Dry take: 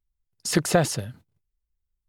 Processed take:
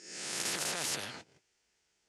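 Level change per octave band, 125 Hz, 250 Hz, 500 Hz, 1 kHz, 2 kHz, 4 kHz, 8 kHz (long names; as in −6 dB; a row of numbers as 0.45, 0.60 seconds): −24.0, −20.5, −18.5, −12.0, −6.5, −3.0, −4.0 decibels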